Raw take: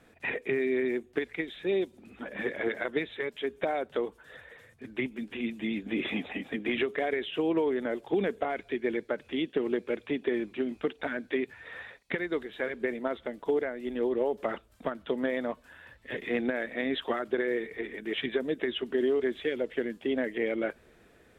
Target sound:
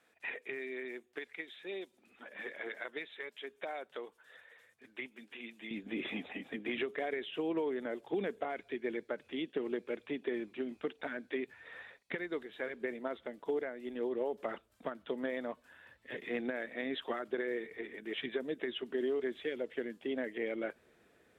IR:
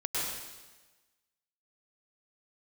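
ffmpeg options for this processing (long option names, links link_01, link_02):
-af "asetnsamples=nb_out_samples=441:pad=0,asendcmd='5.71 highpass f 150',highpass=frequency=910:poles=1,volume=-6.5dB"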